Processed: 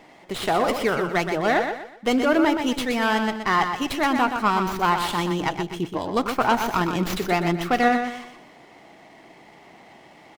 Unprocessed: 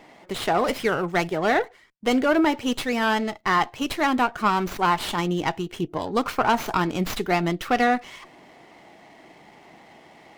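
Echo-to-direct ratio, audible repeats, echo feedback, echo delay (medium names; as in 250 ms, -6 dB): -6.5 dB, 3, 34%, 123 ms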